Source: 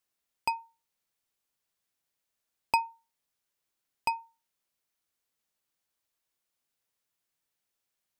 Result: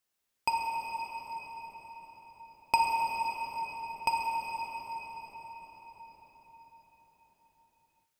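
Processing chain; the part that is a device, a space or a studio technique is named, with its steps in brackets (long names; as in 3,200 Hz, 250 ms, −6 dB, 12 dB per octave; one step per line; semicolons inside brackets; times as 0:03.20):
cathedral (convolution reverb RT60 6.2 s, pre-delay 5 ms, DRR −2 dB)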